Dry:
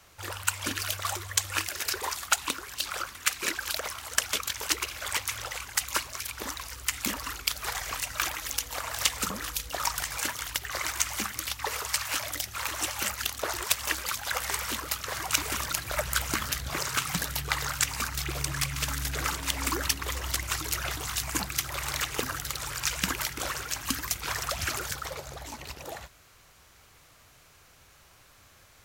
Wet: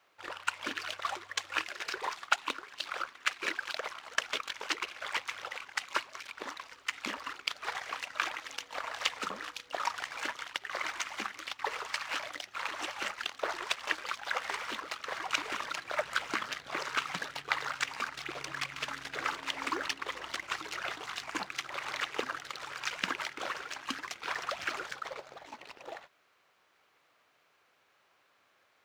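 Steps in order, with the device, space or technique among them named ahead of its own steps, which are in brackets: phone line with mismatched companding (BPF 330–3300 Hz; G.711 law mismatch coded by A)

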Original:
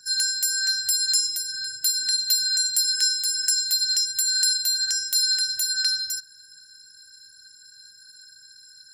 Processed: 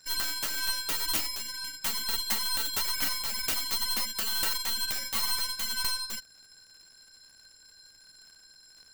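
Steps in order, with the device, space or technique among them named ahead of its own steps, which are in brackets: record under a worn stylus (tracing distortion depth 0.24 ms; crackle 99/s -41 dBFS; pink noise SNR 41 dB); gain -6.5 dB

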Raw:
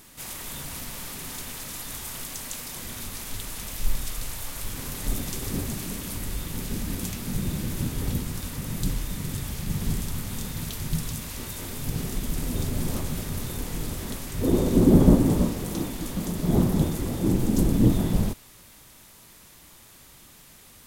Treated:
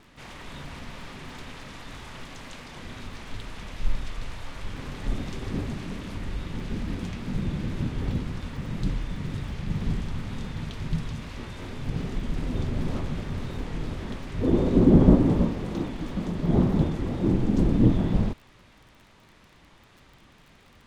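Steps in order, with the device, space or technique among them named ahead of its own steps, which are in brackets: lo-fi chain (LPF 3000 Hz 12 dB/oct; wow and flutter; crackle 31/s -44 dBFS)

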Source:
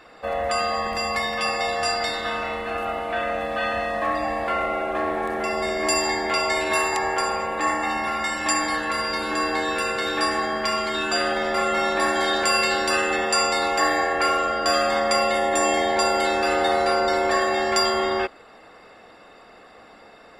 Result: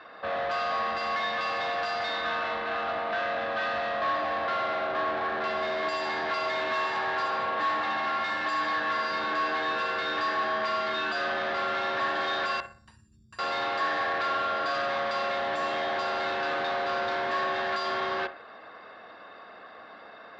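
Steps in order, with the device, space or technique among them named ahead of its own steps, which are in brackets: 12.6–13.39 inverse Chebyshev band-stop 480–2900 Hz, stop band 70 dB; analogue delay pedal into a guitar amplifier (analogue delay 61 ms, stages 1024, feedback 37%, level -20 dB; tube stage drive 31 dB, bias 0.6; speaker cabinet 100–4500 Hz, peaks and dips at 150 Hz -3 dB, 640 Hz +6 dB, 1100 Hz +8 dB, 1600 Hz +9 dB, 3800 Hz +5 dB); gain -1 dB

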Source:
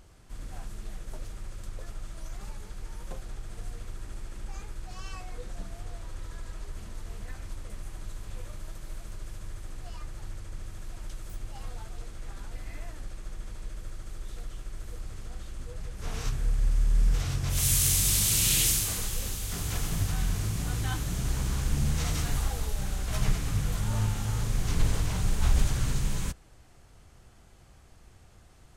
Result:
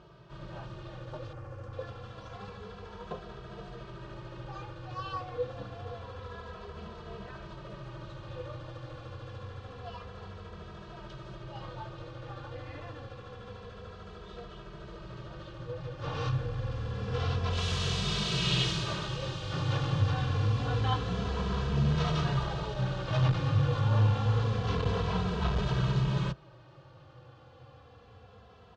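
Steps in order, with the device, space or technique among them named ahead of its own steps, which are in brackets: barber-pole flanger into a guitar amplifier (endless flanger 2.7 ms -0.27 Hz; soft clip -20 dBFS, distortion -19 dB; speaker cabinet 110–3900 Hz, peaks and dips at 130 Hz +6 dB, 250 Hz -7 dB, 500 Hz +8 dB, 1100 Hz +5 dB, 2100 Hz -9 dB); 1.33–1.73 bell 3700 Hz -14.5 dB 0.9 oct; gain +7.5 dB

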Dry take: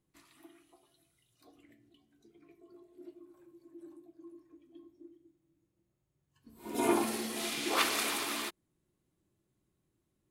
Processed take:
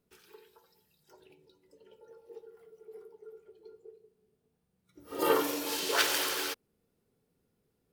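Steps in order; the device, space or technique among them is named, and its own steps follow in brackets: nightcore (varispeed +30%); gain +2.5 dB

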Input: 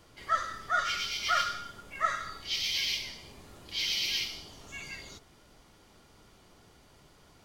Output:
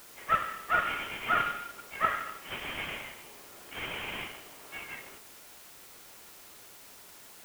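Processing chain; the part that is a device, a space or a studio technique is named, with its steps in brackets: army field radio (BPF 380–3000 Hz; CVSD 16 kbps; white noise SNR 16 dB); gain +2 dB

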